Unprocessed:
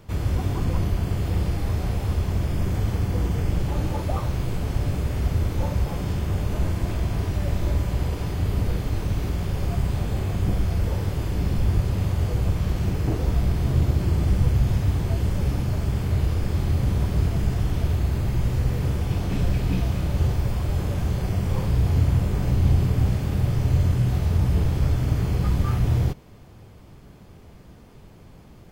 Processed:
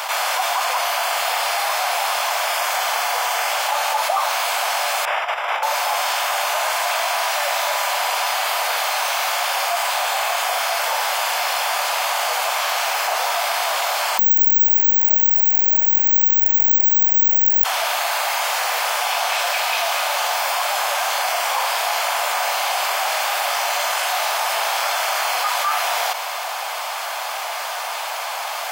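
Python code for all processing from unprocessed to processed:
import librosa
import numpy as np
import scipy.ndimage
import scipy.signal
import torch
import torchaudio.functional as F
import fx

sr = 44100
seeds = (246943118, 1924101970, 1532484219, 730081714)

y = fx.chain(x, sr, fx.savgol(points=25),
    fx.over_compress(threshold_db=-25.0, ratio=-0.5), at=(5.05, 5.63))
y = fx.chain(y, sr, fx.fixed_phaser(hz=1200.0, stages=6),
    fx.resample_bad(factor=2, down='none', up='zero_stuff'), at=(14.19, 17.64))
y = scipy.signal.sosfilt(scipy.signal.butter(8, 670.0, 'highpass', fs=sr, output='sos'), y)
y = fx.notch(y, sr, hz=1900.0, q=26.0)
y = fx.env_flatten(y, sr, amount_pct=70)
y = y * librosa.db_to_amplitude(2.5)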